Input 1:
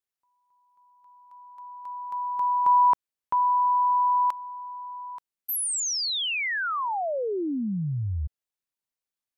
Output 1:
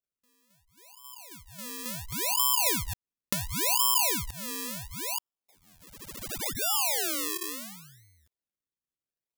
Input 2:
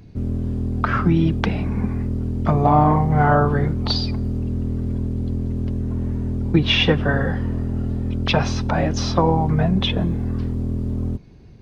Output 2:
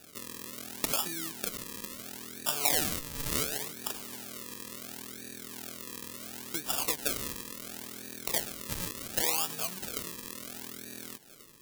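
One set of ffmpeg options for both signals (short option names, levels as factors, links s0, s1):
-af "acompressor=threshold=0.0178:ratio=3:attack=22:release=203:knee=6:detection=peak,highpass=380,lowpass=2200,acrusher=samples=41:mix=1:aa=0.000001:lfo=1:lforange=41:lforate=0.71,crystalizer=i=8.5:c=0,volume=0.631"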